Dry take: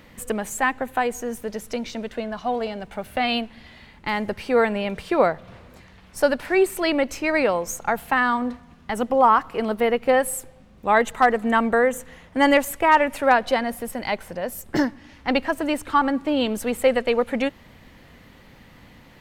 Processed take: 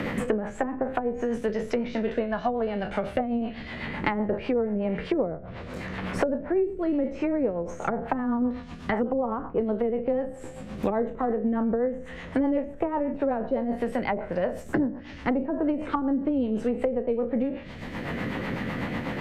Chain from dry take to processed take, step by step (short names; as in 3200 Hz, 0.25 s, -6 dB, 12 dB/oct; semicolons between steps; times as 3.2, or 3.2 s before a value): spectral trails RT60 0.37 s; treble ducked by the level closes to 440 Hz, closed at -18 dBFS; rotary speaker horn 8 Hz; three-band squash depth 100%